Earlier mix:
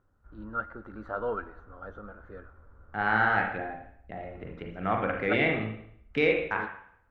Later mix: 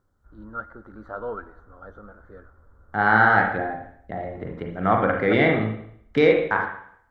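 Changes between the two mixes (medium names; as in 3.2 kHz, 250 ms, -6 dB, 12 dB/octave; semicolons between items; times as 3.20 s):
second voice +8.5 dB; master: add peaking EQ 2.6 kHz -15 dB 0.33 oct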